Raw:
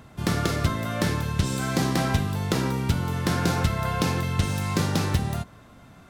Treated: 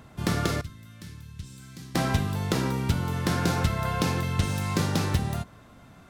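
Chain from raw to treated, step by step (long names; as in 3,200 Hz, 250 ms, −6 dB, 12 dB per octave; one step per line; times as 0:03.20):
0:00.61–0:01.95: guitar amp tone stack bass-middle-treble 6-0-2
level −1.5 dB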